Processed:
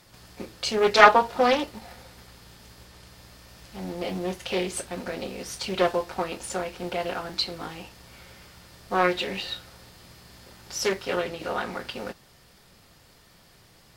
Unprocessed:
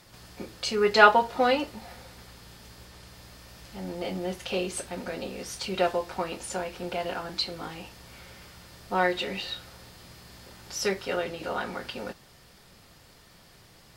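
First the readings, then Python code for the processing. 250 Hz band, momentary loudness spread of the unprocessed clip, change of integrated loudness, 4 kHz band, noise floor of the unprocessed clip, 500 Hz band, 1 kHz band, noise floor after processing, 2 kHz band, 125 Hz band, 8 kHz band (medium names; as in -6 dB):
+2.0 dB, 21 LU, +2.5 dB, +2.0 dB, -55 dBFS, +2.0 dB, +2.5 dB, -56 dBFS, +1.5 dB, +1.5 dB, +2.0 dB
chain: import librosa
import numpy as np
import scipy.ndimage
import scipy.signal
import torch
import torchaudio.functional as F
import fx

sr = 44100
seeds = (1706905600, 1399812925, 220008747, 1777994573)

p1 = fx.high_shelf(x, sr, hz=12000.0, db=4.5)
p2 = np.sign(p1) * np.maximum(np.abs(p1) - 10.0 ** (-43.5 / 20.0), 0.0)
p3 = p1 + (p2 * 10.0 ** (-6.0 / 20.0))
p4 = fx.doppler_dist(p3, sr, depth_ms=0.35)
y = p4 * 10.0 ** (-1.0 / 20.0)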